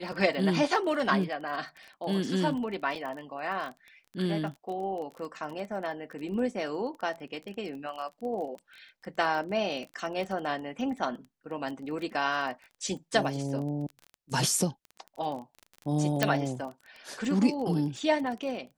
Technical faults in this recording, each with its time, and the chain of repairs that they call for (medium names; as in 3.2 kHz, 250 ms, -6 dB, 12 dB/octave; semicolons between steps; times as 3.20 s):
crackle 22 per s -36 dBFS
2.95 s: dropout 4.6 ms
16.23 s: pop -8 dBFS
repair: de-click; interpolate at 2.95 s, 4.6 ms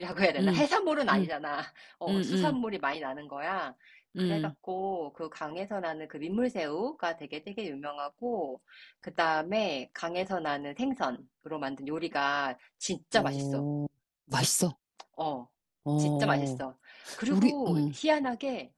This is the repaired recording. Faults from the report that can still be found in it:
16.23 s: pop